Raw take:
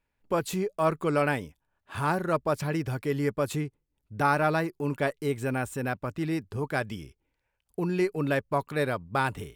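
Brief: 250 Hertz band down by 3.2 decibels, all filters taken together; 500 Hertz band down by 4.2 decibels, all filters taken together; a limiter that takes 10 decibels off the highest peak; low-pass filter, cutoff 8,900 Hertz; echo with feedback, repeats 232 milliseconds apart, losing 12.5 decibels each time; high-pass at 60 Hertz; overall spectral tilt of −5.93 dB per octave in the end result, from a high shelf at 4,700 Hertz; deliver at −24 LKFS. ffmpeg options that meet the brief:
ffmpeg -i in.wav -af "highpass=60,lowpass=8900,equalizer=frequency=250:width_type=o:gain=-3,equalizer=frequency=500:width_type=o:gain=-4.5,highshelf=frequency=4700:gain=-4.5,alimiter=limit=-23dB:level=0:latency=1,aecho=1:1:232|464|696:0.237|0.0569|0.0137,volume=10.5dB" out.wav

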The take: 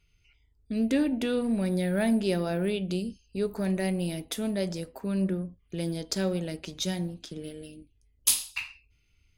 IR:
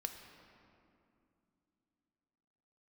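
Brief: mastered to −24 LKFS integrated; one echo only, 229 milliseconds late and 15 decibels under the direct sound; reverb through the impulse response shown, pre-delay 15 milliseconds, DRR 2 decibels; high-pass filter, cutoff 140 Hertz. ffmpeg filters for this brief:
-filter_complex "[0:a]highpass=140,aecho=1:1:229:0.178,asplit=2[link_01][link_02];[1:a]atrim=start_sample=2205,adelay=15[link_03];[link_02][link_03]afir=irnorm=-1:irlink=0,volume=-0.5dB[link_04];[link_01][link_04]amix=inputs=2:normalize=0,volume=4dB"

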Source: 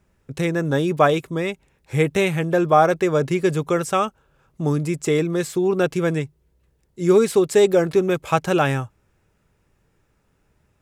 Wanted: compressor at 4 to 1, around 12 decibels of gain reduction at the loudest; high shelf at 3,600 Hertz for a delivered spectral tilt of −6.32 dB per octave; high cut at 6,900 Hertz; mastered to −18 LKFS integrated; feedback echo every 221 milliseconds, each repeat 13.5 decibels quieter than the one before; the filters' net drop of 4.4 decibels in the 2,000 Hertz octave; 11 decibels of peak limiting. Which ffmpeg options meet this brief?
ffmpeg -i in.wav -af "lowpass=6900,equalizer=frequency=2000:width_type=o:gain=-4.5,highshelf=frequency=3600:gain=-5,acompressor=threshold=-26dB:ratio=4,alimiter=limit=-24dB:level=0:latency=1,aecho=1:1:221|442:0.211|0.0444,volume=14.5dB" out.wav

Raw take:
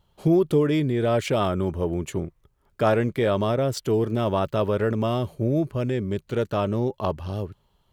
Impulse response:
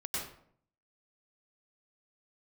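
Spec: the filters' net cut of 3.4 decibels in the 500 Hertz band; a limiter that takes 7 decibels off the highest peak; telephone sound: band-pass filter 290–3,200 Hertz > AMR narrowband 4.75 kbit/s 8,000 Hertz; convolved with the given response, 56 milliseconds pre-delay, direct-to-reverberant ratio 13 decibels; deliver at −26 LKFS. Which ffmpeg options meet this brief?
-filter_complex "[0:a]equalizer=frequency=500:width_type=o:gain=-3.5,alimiter=limit=-16.5dB:level=0:latency=1,asplit=2[link_01][link_02];[1:a]atrim=start_sample=2205,adelay=56[link_03];[link_02][link_03]afir=irnorm=-1:irlink=0,volume=-16.5dB[link_04];[link_01][link_04]amix=inputs=2:normalize=0,highpass=290,lowpass=3200,volume=4.5dB" -ar 8000 -c:a libopencore_amrnb -b:a 4750

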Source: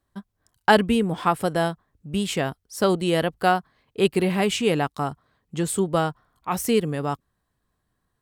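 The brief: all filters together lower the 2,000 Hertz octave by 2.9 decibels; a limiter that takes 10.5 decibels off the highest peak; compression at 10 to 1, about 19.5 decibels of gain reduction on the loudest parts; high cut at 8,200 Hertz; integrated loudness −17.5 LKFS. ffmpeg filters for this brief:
ffmpeg -i in.wav -af "lowpass=8200,equalizer=frequency=2000:width_type=o:gain=-4,acompressor=threshold=-32dB:ratio=10,volume=21.5dB,alimiter=limit=-5dB:level=0:latency=1" out.wav

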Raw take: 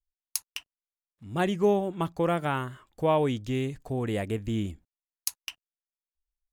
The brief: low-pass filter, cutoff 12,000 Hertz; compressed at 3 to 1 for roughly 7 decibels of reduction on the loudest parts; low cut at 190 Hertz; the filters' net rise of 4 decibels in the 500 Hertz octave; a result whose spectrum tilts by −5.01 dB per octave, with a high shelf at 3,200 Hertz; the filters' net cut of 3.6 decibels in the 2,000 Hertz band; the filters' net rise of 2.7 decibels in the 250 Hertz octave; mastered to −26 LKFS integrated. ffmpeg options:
ffmpeg -i in.wav -af "highpass=190,lowpass=12000,equalizer=frequency=250:width_type=o:gain=4.5,equalizer=frequency=500:width_type=o:gain=4,equalizer=frequency=2000:width_type=o:gain=-7,highshelf=frequency=3200:gain=4.5,acompressor=threshold=-23dB:ratio=3,volume=4dB" out.wav

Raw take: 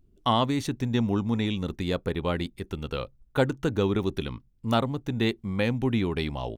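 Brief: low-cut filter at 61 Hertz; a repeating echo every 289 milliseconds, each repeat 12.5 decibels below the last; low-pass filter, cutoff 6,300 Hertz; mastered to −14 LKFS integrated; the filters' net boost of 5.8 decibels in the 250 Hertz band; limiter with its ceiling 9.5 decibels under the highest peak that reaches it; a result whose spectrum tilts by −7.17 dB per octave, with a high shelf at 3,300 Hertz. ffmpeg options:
ffmpeg -i in.wav -af "highpass=61,lowpass=6300,equalizer=frequency=250:width_type=o:gain=7,highshelf=frequency=3300:gain=-7.5,alimiter=limit=-17dB:level=0:latency=1,aecho=1:1:289|578|867:0.237|0.0569|0.0137,volume=13.5dB" out.wav

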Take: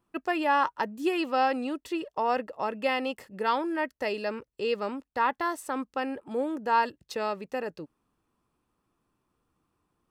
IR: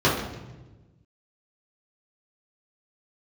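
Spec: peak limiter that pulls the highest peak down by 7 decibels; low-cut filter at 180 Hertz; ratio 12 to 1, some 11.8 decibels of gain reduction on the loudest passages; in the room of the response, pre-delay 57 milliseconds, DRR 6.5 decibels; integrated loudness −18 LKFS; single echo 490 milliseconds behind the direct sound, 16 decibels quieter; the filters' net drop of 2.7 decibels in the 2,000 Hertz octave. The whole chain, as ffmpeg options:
-filter_complex "[0:a]highpass=180,equalizer=frequency=2000:width_type=o:gain=-3.5,acompressor=threshold=-32dB:ratio=12,alimiter=level_in=3.5dB:limit=-24dB:level=0:latency=1,volume=-3.5dB,aecho=1:1:490:0.158,asplit=2[link_01][link_02];[1:a]atrim=start_sample=2205,adelay=57[link_03];[link_02][link_03]afir=irnorm=-1:irlink=0,volume=-25.5dB[link_04];[link_01][link_04]amix=inputs=2:normalize=0,volume=19dB"

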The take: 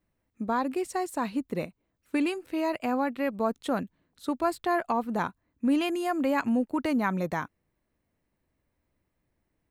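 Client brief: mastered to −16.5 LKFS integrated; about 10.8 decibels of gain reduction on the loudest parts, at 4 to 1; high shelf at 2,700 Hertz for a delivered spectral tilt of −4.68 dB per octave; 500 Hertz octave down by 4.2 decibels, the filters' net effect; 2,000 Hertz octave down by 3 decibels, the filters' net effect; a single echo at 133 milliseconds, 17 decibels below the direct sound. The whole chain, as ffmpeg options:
ffmpeg -i in.wav -af "equalizer=frequency=500:width_type=o:gain=-6,equalizer=frequency=2000:width_type=o:gain=-5,highshelf=frequency=2700:gain=3.5,acompressor=threshold=-37dB:ratio=4,aecho=1:1:133:0.141,volume=24dB" out.wav

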